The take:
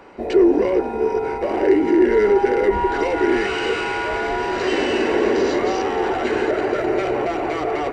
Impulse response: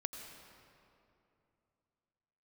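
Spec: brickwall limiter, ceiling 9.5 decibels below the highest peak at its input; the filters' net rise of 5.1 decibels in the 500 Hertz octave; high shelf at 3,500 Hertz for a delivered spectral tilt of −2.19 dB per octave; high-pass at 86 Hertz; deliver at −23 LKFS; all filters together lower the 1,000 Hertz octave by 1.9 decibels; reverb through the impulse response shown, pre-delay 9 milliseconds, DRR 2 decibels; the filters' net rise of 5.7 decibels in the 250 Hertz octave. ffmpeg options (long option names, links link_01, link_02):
-filter_complex "[0:a]highpass=86,equalizer=frequency=250:width_type=o:gain=6.5,equalizer=frequency=500:width_type=o:gain=5,equalizer=frequency=1000:width_type=o:gain=-5,highshelf=frequency=3500:gain=-3.5,alimiter=limit=-9dB:level=0:latency=1,asplit=2[link_01][link_02];[1:a]atrim=start_sample=2205,adelay=9[link_03];[link_02][link_03]afir=irnorm=-1:irlink=0,volume=-1.5dB[link_04];[link_01][link_04]amix=inputs=2:normalize=0,volume=-7.5dB"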